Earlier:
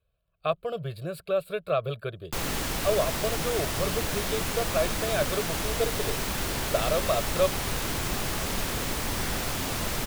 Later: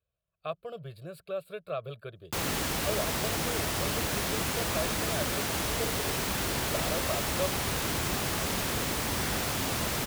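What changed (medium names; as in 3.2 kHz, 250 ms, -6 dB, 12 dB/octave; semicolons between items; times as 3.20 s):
speech -8.5 dB; master: add high-pass 59 Hz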